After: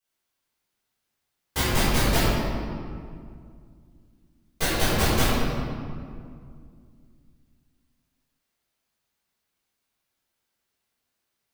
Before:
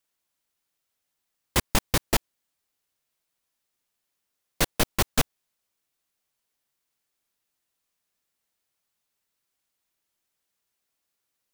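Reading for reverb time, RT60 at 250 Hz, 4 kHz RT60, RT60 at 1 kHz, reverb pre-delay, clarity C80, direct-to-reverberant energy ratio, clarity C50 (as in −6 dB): 2.2 s, 3.1 s, 1.3 s, 2.1 s, 4 ms, −1.5 dB, −12.5 dB, −4.0 dB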